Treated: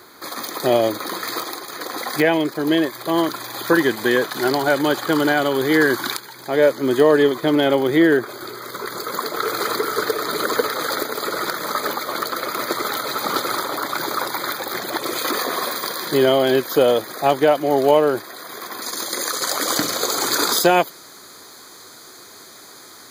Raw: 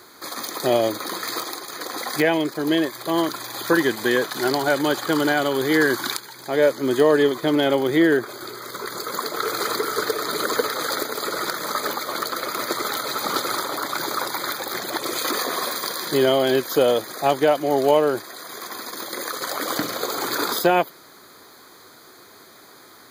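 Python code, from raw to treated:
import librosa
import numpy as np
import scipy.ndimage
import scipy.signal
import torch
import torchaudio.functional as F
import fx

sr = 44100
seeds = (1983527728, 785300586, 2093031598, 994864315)

y = fx.peak_eq(x, sr, hz=7000.0, db=fx.steps((0.0, -3.5), (18.82, 8.0)), octaves=1.5)
y = y * librosa.db_to_amplitude(2.5)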